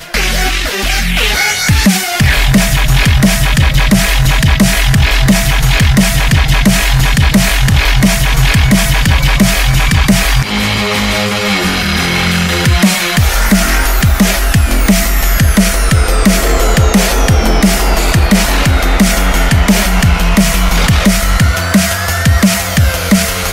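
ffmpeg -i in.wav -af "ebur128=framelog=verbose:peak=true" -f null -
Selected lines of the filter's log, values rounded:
Integrated loudness:
  I:         -10.3 LUFS
  Threshold: -20.3 LUFS
Loudness range:
  LRA:         1.2 LU
  Threshold: -30.2 LUFS
  LRA low:   -10.9 LUFS
  LRA high:   -9.6 LUFS
True peak:
  Peak:       -0.5 dBFS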